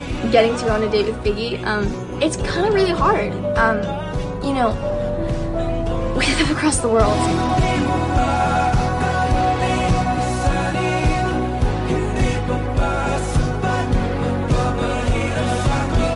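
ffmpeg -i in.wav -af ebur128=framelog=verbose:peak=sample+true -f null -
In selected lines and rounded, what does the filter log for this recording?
Integrated loudness:
  I:         -19.4 LUFS
  Threshold: -29.4 LUFS
Loudness range:
  LRA:         2.6 LU
  Threshold: -39.4 LUFS
  LRA low:   -20.5 LUFS
  LRA high:  -18.0 LUFS
Sample peak:
  Peak:       -2.3 dBFS
True peak:
  Peak:       -2.3 dBFS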